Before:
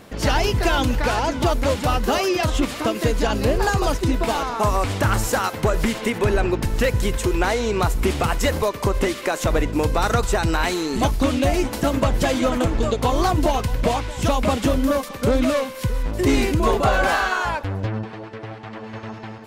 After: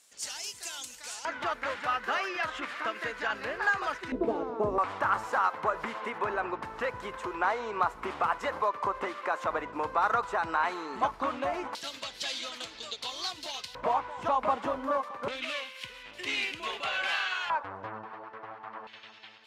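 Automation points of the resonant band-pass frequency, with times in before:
resonant band-pass, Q 2.3
7,700 Hz
from 0:01.25 1,600 Hz
from 0:04.12 380 Hz
from 0:04.78 1,100 Hz
from 0:11.75 4,100 Hz
from 0:13.75 1,000 Hz
from 0:15.28 2,800 Hz
from 0:17.50 1,100 Hz
from 0:18.87 3,400 Hz

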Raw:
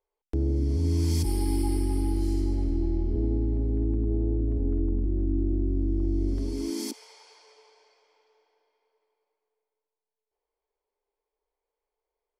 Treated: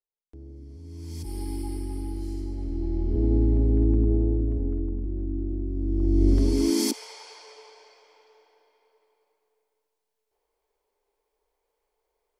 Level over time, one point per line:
0:00.85 −18 dB
0:01.39 −6 dB
0:02.55 −6 dB
0:03.38 +5.5 dB
0:04.01 +5.5 dB
0:04.96 −3.5 dB
0:05.73 −3.5 dB
0:06.29 +8.5 dB

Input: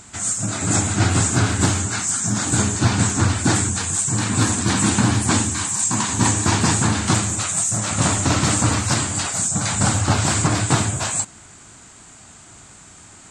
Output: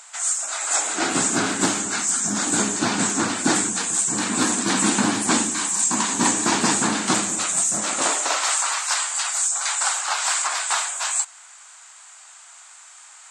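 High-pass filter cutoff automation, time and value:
high-pass filter 24 dB per octave
0:00.70 690 Hz
0:01.17 210 Hz
0:07.76 210 Hz
0:08.57 830 Hz

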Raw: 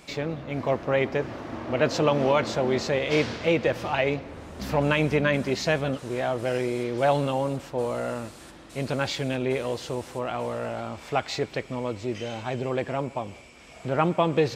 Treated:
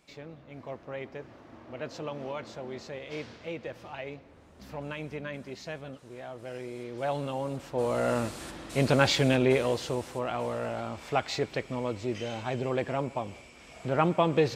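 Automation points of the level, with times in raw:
0:06.28 −15 dB
0:07.51 −6 dB
0:08.19 +4.5 dB
0:09.28 +4.5 dB
0:10.14 −2 dB

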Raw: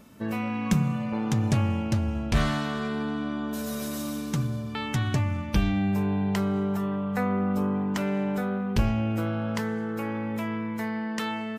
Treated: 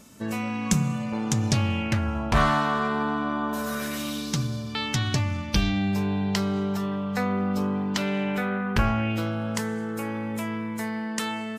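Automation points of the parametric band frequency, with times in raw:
parametric band +12 dB 1.4 octaves
0:01.38 7,200 Hz
0:02.22 1,000 Hz
0:03.58 1,000 Hz
0:04.32 4,800 Hz
0:07.87 4,800 Hz
0:08.93 1,200 Hz
0:09.36 8,600 Hz

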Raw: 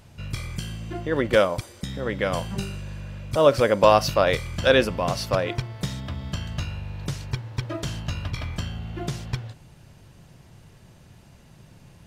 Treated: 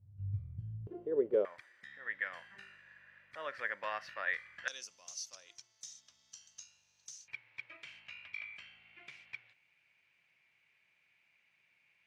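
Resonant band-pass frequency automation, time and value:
resonant band-pass, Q 9.3
100 Hz
from 0:00.87 420 Hz
from 0:01.45 1,800 Hz
from 0:04.68 6,200 Hz
from 0:07.28 2,300 Hz

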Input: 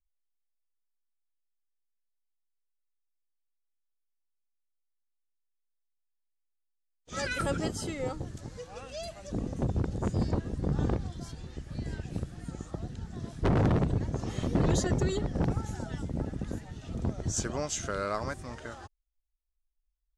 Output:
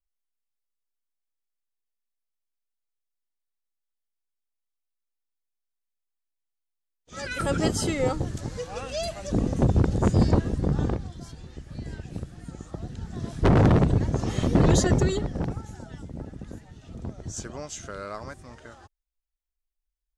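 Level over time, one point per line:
0:07.17 −3 dB
0:07.69 +9 dB
0:10.42 +9 dB
0:11.06 0 dB
0:12.61 0 dB
0:13.36 +7 dB
0:14.96 +7 dB
0:15.66 −4 dB

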